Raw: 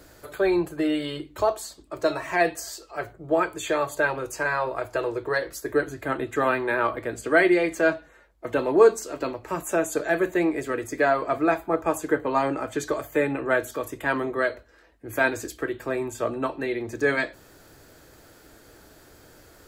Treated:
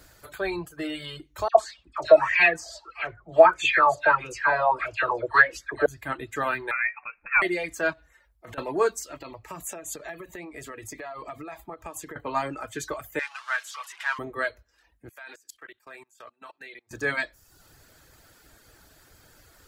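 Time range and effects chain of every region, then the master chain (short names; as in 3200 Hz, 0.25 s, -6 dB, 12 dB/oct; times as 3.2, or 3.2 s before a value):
1.48–5.86 LPF 5900 Hz + dispersion lows, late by 78 ms, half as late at 1600 Hz + LFO bell 1.6 Hz 590–2700 Hz +18 dB
6.71–7.42 HPF 610 Hz 24 dB/oct + inverted band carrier 3000 Hz
7.93–8.58 transient shaper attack -5 dB, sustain +3 dB + compressor 10:1, threshold -34 dBFS
9.17–12.16 notch 1500 Hz, Q 5.8 + compressor 20:1, threshold -28 dBFS
13.19–14.19 zero-crossing step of -30 dBFS + HPF 1000 Hz 24 dB/oct + air absorption 76 m
15.09–16.91 HPF 1300 Hz 6 dB/oct + high shelf 4400 Hz -3.5 dB + level quantiser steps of 20 dB
whole clip: reverb removal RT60 0.67 s; bell 380 Hz -8.5 dB 2 oct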